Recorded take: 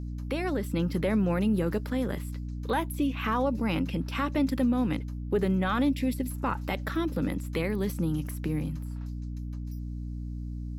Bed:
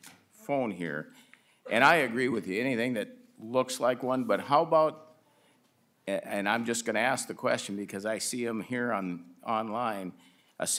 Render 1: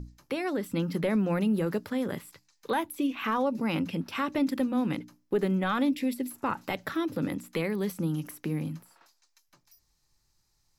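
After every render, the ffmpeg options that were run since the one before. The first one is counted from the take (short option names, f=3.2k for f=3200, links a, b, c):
-af "bandreject=f=60:t=h:w=6,bandreject=f=120:t=h:w=6,bandreject=f=180:t=h:w=6,bandreject=f=240:t=h:w=6,bandreject=f=300:t=h:w=6"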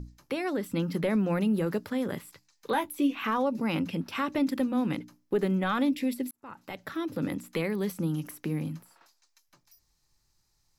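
-filter_complex "[0:a]asettb=1/sr,asplit=3[a][b][c];[a]atrim=end=2.724[d];[b]atrim=start=2.72:end=3.19,asetpts=PTS-STARTPTS,afade=t=in:d=0.004:c=qsin,afade=t=out:st=0.466:d=0.004:c=qsin,asplit=2[e][f];[f]adelay=14,volume=-6.5dB[g];[e][g]amix=inputs=2:normalize=0,atrim=end_sample=20727[h];[c]atrim=start=3.186[i];[d][h]acrossfade=d=0.004:c1=hsin:c2=qsin[j];[j][i]acrossfade=d=0.004:c1=qsin:c2=hsin,asplit=2[k][l];[k]atrim=end=6.31,asetpts=PTS-STARTPTS,afade=t=out:st=6.306:d=0.004:c=hsin[m];[l]atrim=start=6.31,asetpts=PTS-STARTPTS,afade=t=in:d=0.98[n];[m][n]concat=n=2:v=0:a=1"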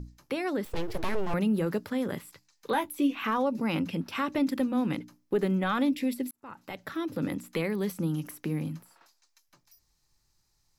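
-filter_complex "[0:a]asettb=1/sr,asplit=3[a][b][c];[a]atrim=end=0.654[d];[b]atrim=start=0.65:end=1.34,asetpts=PTS-STARTPTS,afade=t=in:d=0.004:c=qsin,afade=t=out:st=0.686:d=0.004:c=qsin,aeval=exprs='abs(val(0))':c=same[e];[c]atrim=start=1.336[f];[d][e]acrossfade=d=0.004:c1=hsin:c2=qsin[g];[g][f]acrossfade=d=0.004:c1=qsin:c2=hsin"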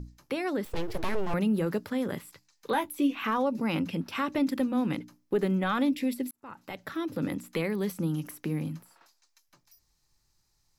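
-af anull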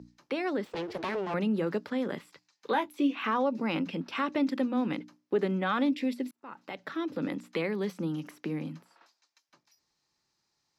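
-filter_complex "[0:a]highpass=44,acrossover=split=170 6200:gain=0.112 1 0.126[a][b][c];[a][b][c]amix=inputs=3:normalize=0"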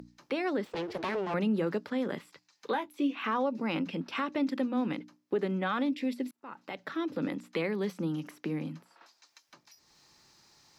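-af "alimiter=limit=-20.5dB:level=0:latency=1:release=485,acompressor=mode=upward:threshold=-47dB:ratio=2.5"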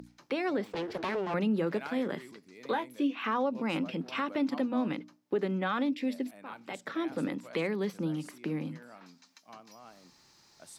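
-filter_complex "[1:a]volume=-21.5dB[a];[0:a][a]amix=inputs=2:normalize=0"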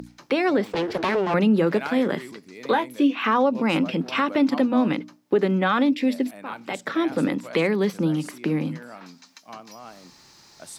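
-af "volume=10dB"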